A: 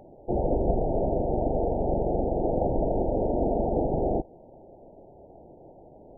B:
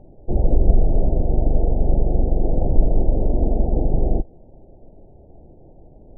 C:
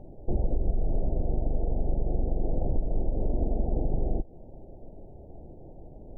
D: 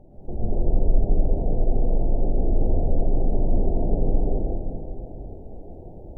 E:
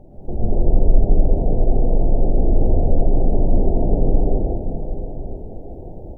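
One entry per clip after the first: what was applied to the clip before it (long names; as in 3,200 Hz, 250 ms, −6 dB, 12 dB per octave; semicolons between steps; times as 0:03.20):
spectral tilt −4.5 dB per octave; level −6.5 dB
downward compressor 5 to 1, threshold −22 dBFS, peak gain reduction 15.5 dB
dense smooth reverb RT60 3.2 s, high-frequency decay 0.9×, pre-delay 95 ms, DRR −9 dB; level −4 dB
single-tap delay 997 ms −16 dB; level +5.5 dB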